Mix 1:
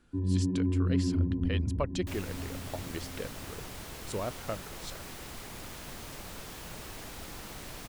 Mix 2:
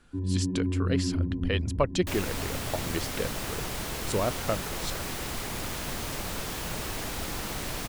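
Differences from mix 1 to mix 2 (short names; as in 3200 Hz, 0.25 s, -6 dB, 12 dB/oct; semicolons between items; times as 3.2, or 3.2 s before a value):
speech +7.0 dB; second sound +9.5 dB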